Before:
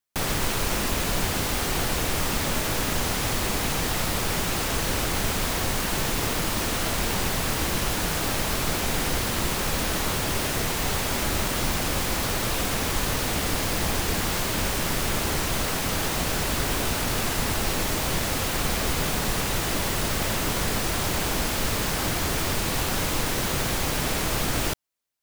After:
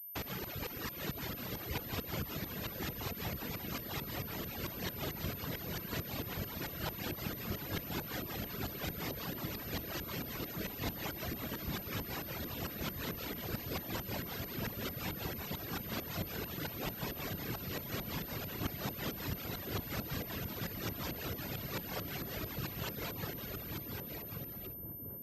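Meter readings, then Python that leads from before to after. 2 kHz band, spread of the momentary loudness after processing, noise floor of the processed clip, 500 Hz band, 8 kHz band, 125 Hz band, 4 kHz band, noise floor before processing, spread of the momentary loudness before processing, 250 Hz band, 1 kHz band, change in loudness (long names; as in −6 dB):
−16.0 dB, 2 LU, −46 dBFS, −14.0 dB, −23.0 dB, −12.0 dB, −16.5 dB, −27 dBFS, 0 LU, −12.0 dB, −17.0 dB, −15.0 dB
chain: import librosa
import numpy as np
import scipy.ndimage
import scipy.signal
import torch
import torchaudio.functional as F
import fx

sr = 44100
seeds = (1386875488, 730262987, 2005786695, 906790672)

p1 = fx.fade_out_tail(x, sr, length_s=2.33)
p2 = fx.whisperise(p1, sr, seeds[0])
p3 = fx.dereverb_blind(p2, sr, rt60_s=1.0)
p4 = scipy.signal.sosfilt(scipy.signal.butter(2, 70.0, 'highpass', fs=sr, output='sos'), p3)
p5 = fx.rotary(p4, sr, hz=5.5)
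p6 = fx.tremolo_shape(p5, sr, shape='saw_up', hz=4.5, depth_pct=90)
p7 = p6 + fx.echo_wet_lowpass(p6, sr, ms=1131, feedback_pct=57, hz=470.0, wet_db=-3.5, dry=0)
p8 = fx.pwm(p7, sr, carrier_hz=13000.0)
y = p8 * 10.0 ** (-6.0 / 20.0)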